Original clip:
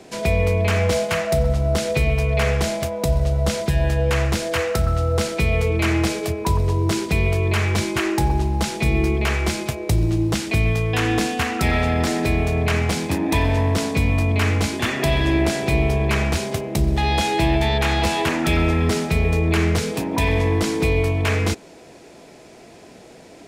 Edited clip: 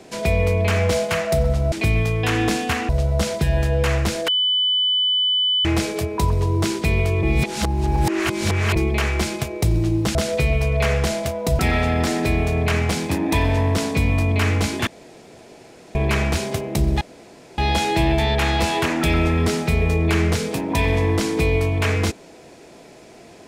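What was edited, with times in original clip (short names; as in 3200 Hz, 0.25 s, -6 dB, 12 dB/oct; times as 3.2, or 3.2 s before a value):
1.72–3.16 swap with 10.42–11.59
4.55–5.92 bleep 3000 Hz -16 dBFS
7.5–9.03 reverse
14.87–15.95 room tone
17.01 insert room tone 0.57 s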